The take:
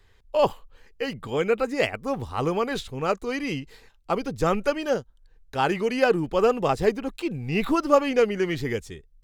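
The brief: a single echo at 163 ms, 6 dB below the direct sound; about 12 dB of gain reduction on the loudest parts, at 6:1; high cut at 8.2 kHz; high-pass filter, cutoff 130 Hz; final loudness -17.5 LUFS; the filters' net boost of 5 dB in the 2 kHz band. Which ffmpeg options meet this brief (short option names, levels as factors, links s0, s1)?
-af "highpass=130,lowpass=8200,equalizer=f=2000:t=o:g=6.5,acompressor=threshold=0.0501:ratio=6,aecho=1:1:163:0.501,volume=4.47"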